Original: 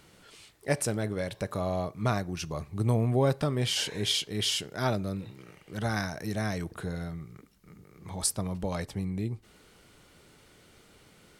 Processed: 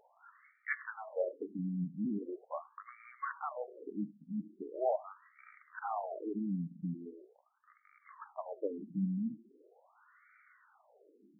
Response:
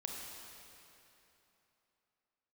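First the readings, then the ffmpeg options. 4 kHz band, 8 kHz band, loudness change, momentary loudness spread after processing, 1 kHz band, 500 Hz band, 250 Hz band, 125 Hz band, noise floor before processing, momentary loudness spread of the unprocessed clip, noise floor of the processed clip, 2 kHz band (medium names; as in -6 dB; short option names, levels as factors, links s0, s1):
under -40 dB, under -40 dB, -9.0 dB, 17 LU, -5.5 dB, -7.0 dB, -5.0 dB, -14.5 dB, -59 dBFS, 12 LU, -70 dBFS, -7.5 dB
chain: -filter_complex "[0:a]flanger=delay=2:depth=9.9:regen=78:speed=1.2:shape=triangular,asplit=2[s0][s1];[1:a]atrim=start_sample=2205,atrim=end_sample=3528,adelay=77[s2];[s1][s2]afir=irnorm=-1:irlink=0,volume=0.168[s3];[s0][s3]amix=inputs=2:normalize=0,afftfilt=real='re*between(b*sr/1024,200*pow(1700/200,0.5+0.5*sin(2*PI*0.41*pts/sr))/1.41,200*pow(1700/200,0.5+0.5*sin(2*PI*0.41*pts/sr))*1.41)':imag='im*between(b*sr/1024,200*pow(1700/200,0.5+0.5*sin(2*PI*0.41*pts/sr))/1.41,200*pow(1700/200,0.5+0.5*sin(2*PI*0.41*pts/sr))*1.41)':win_size=1024:overlap=0.75,volume=1.88"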